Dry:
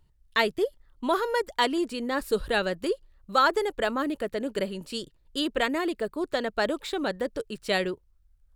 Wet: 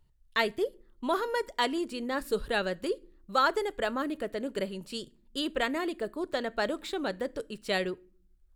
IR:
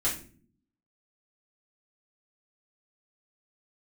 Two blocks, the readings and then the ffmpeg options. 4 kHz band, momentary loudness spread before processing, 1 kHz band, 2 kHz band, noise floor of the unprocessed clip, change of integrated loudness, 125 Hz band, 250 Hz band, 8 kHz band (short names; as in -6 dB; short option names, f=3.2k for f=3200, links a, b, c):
-3.5 dB, 9 LU, -3.5 dB, -3.5 dB, -64 dBFS, -3.5 dB, -3.5 dB, -4.0 dB, -3.5 dB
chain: -filter_complex "[0:a]asplit=2[a][b];[1:a]atrim=start_sample=2205[c];[b][c]afir=irnorm=-1:irlink=0,volume=-25dB[d];[a][d]amix=inputs=2:normalize=0,volume=-4dB"